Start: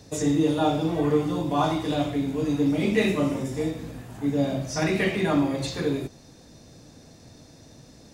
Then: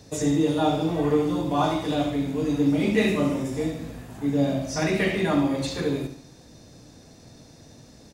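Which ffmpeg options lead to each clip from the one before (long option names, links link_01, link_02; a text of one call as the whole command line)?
ffmpeg -i in.wav -af "aecho=1:1:71|142|213|284|355:0.316|0.136|0.0585|0.0251|0.0108" out.wav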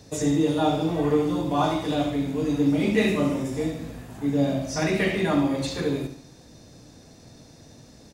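ffmpeg -i in.wav -af anull out.wav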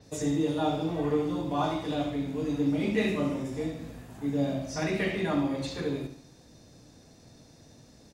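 ffmpeg -i in.wav -af "adynamicequalizer=threshold=0.00355:dfrequency=6200:dqfactor=0.7:tfrequency=6200:tqfactor=0.7:attack=5:release=100:ratio=0.375:range=2.5:mode=cutabove:tftype=highshelf,volume=-5.5dB" out.wav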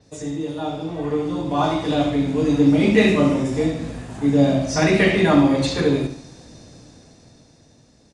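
ffmpeg -i in.wav -af "dynaudnorm=framelen=240:gausssize=13:maxgain=14dB,aresample=22050,aresample=44100" out.wav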